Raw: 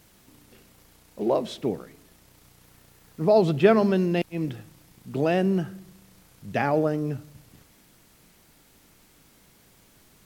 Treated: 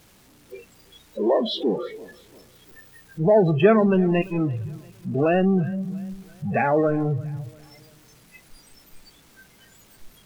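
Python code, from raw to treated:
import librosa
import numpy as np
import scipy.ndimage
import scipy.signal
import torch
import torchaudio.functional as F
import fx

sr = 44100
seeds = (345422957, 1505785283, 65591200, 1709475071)

p1 = x + 0.5 * 10.0 ** (-20.5 / 20.0) * np.sign(x)
p2 = fx.high_shelf(p1, sr, hz=9000.0, db=-6.0)
p3 = fx.noise_reduce_blind(p2, sr, reduce_db=27)
y = p3 + fx.echo_feedback(p3, sr, ms=343, feedback_pct=46, wet_db=-23, dry=0)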